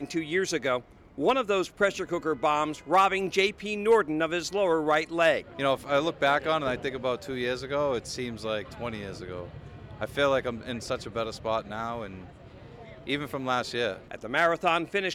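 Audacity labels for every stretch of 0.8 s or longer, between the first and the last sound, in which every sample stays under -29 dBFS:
12.060000	13.070000	silence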